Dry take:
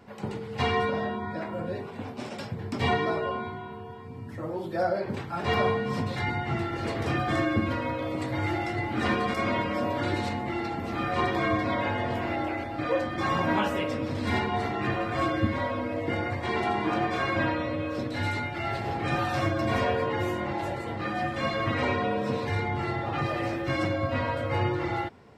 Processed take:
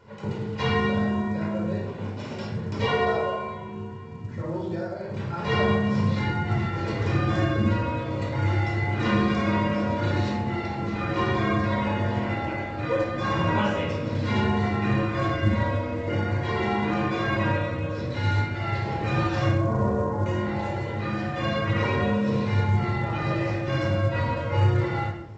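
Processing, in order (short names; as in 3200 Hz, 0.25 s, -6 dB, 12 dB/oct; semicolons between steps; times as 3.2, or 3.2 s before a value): 2.81–3.62 resonant low shelf 380 Hz -6.5 dB, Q 3; 4.66–5.2 compressor 6:1, threshold -31 dBFS, peak gain reduction 9.5 dB; 19.52–20.26 LPF 1200 Hz 24 dB/oct; reverb RT60 0.80 s, pre-delay 20 ms, DRR 0.5 dB; gain -3.5 dB; µ-law 128 kbps 16000 Hz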